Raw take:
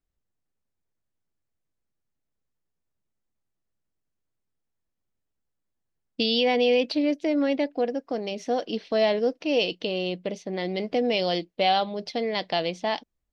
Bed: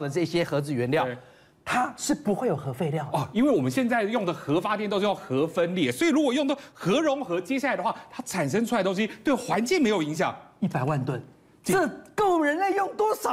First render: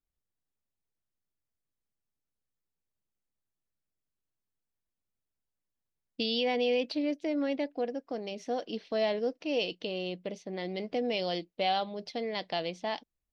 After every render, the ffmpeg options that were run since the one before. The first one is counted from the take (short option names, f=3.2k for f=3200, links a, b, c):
-af "volume=-7dB"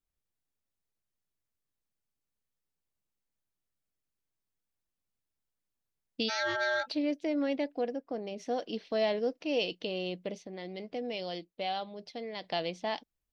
-filter_complex "[0:a]asplit=3[a][b][c];[a]afade=t=out:st=6.28:d=0.02[d];[b]aeval=exprs='val(0)*sin(2*PI*1100*n/s)':c=same,afade=t=in:st=6.28:d=0.02,afade=t=out:st=6.86:d=0.02[e];[c]afade=t=in:st=6.86:d=0.02[f];[d][e][f]amix=inputs=3:normalize=0,asplit=3[g][h][i];[g]afade=t=out:st=7.95:d=0.02[j];[h]highshelf=f=2.5k:g=-9.5,afade=t=in:st=7.95:d=0.02,afade=t=out:st=8.38:d=0.02[k];[i]afade=t=in:st=8.38:d=0.02[l];[j][k][l]amix=inputs=3:normalize=0,asplit=3[m][n][o];[m]atrim=end=10.472[p];[n]atrim=start=10.468:end=12.442,asetpts=PTS-STARTPTS,volume=-5.5dB[q];[o]atrim=start=12.438[r];[p][q]acrossfade=d=0.004:c1=hsin:c2=hsin[s];[s][r]acrossfade=d=0.004:c1=hsin:c2=hsin"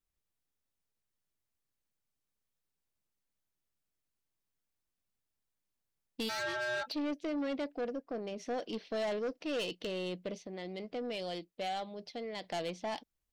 -af "asoftclip=type=tanh:threshold=-31dB"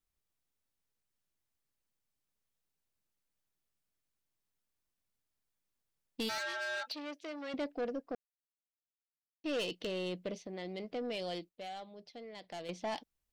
-filter_complex "[0:a]asettb=1/sr,asplit=3[a][b][c];[a]atrim=end=6.384[d];[b]atrim=start=6.38:end=7.54,asetpts=PTS-STARTPTS,afade=t=in:d=0.004:c=qsin,afade=t=out:st=1.156:d=0.004:c=qsin,highpass=f=970:p=1[e];[c]atrim=start=7.536[f];[d][e]acrossfade=d=0.004:c1=hsin:c2=qsin[g];[g][f]acrossfade=d=0.004:c1=qsin:c2=hsin,asplit=5[h][i][j][k][l];[h]atrim=end=8.15,asetpts=PTS-STARTPTS,afade=t=out:st=8.146:d=0.004:c=hsin[m];[i]atrim=start=8.15:end=9.44,asetpts=PTS-STARTPTS,volume=0[n];[j]atrim=start=9.44:end=11.492,asetpts=PTS-STARTPTS,afade=t=in:d=0.004:c=hsin[o];[k]atrim=start=11.488:end=12.692,asetpts=PTS-STARTPTS,volume=-7.5dB[p];[l]atrim=start=12.688[q];[m][n][o]concat=n=3:v=0:a=1[r];[r][p]acrossfade=d=0.004:c1=hsin:c2=hsin[s];[s][q]acrossfade=d=0.004:c1=hsin:c2=hsin"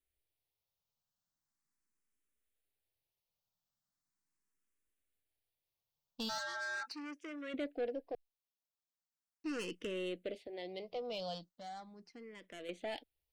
-filter_complex "[0:a]asplit=2[a][b];[b]afreqshift=0.39[c];[a][c]amix=inputs=2:normalize=1"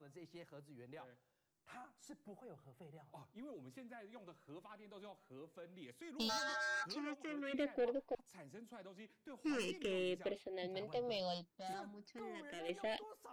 -filter_complex "[1:a]volume=-31dB[a];[0:a][a]amix=inputs=2:normalize=0"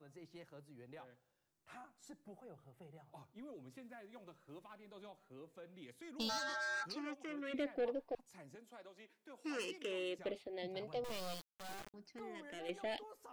-filter_complex "[0:a]asettb=1/sr,asplit=3[a][b][c];[a]atrim=end=3.824[d];[b]atrim=start=3.82:end=4.92,asetpts=PTS-STARTPTS,afade=t=in:d=0.004:c=qsin,afade=t=out:st=1.096:d=0.004:c=qsin,acrusher=bits=7:mode=log:mix=0:aa=0.000001[e];[c]atrim=start=4.916[f];[d][e]acrossfade=d=0.004:c1=hsin:c2=qsin[g];[g][f]acrossfade=d=0.004:c1=qsin:c2=hsin,asettb=1/sr,asplit=3[h][i][j];[h]atrim=end=8.554[k];[i]atrim=start=8.55:end=10.19,asetpts=PTS-STARTPTS,afade=t=in:d=0.004:c=qsin,afade=t=out:st=1.636:d=0.004:c=qsin,highpass=340[l];[j]atrim=start=10.186[m];[k][l]acrossfade=d=0.004:c1=hsin:c2=qsin[n];[n][m]acrossfade=d=0.004:c1=qsin:c2=hsin,asettb=1/sr,asplit=3[o][p][q];[o]atrim=end=11.044[r];[p]atrim=start=11.04:end=11.94,asetpts=PTS-STARTPTS,afade=t=in:d=0.004:c=qsin,afade=t=out:st=0.896:d=0.004:c=qsin,acrusher=bits=5:dc=4:mix=0:aa=0.000001[s];[q]atrim=start=11.936[t];[r][s]acrossfade=d=0.004:c1=hsin:c2=qsin[u];[u][t]acrossfade=d=0.004:c1=qsin:c2=hsin"